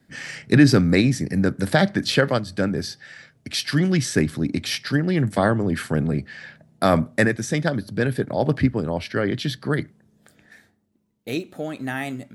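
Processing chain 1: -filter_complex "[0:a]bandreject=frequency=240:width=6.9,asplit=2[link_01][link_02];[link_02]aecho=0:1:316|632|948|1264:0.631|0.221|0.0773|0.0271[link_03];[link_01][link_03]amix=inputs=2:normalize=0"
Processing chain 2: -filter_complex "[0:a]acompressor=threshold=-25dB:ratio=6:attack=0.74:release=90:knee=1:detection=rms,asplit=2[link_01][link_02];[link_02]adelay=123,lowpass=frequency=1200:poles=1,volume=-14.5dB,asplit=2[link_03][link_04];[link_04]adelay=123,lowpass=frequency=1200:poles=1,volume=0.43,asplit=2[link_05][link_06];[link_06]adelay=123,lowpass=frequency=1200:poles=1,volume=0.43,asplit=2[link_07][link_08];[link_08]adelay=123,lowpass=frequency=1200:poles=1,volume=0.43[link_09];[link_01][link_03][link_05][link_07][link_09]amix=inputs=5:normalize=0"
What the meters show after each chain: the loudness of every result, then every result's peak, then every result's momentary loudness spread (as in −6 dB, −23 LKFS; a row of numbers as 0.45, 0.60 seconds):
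−21.0, −32.0 LKFS; −1.5, −17.5 dBFS; 13, 9 LU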